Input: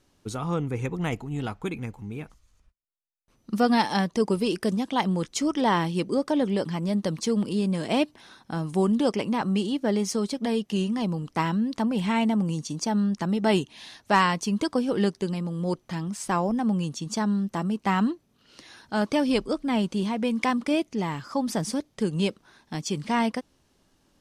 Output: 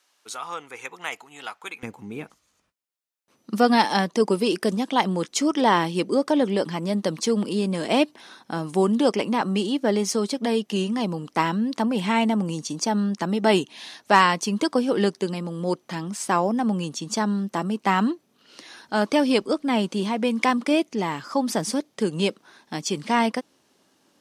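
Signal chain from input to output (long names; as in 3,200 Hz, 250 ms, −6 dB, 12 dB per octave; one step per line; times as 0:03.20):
high-pass filter 1,000 Hz 12 dB per octave, from 0:01.83 230 Hz
level +4.5 dB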